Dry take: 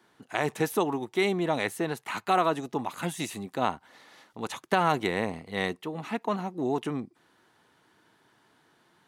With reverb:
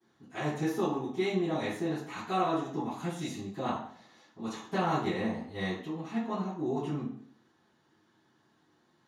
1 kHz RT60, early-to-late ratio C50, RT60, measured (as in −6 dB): 0.55 s, 2.5 dB, 0.60 s